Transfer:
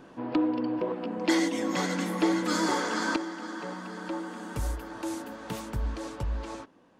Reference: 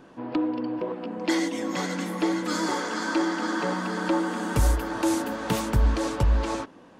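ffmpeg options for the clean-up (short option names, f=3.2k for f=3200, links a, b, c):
-af "asetnsamples=n=441:p=0,asendcmd='3.16 volume volume 10dB',volume=0dB"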